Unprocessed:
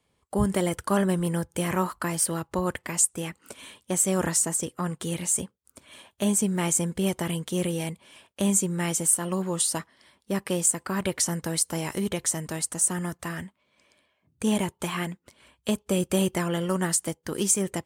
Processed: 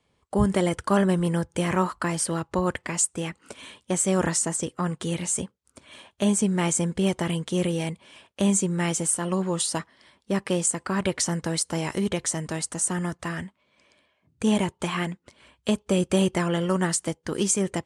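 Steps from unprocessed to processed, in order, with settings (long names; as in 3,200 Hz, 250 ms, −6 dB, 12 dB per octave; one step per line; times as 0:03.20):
Bessel low-pass filter 7,100 Hz, order 8
level +2.5 dB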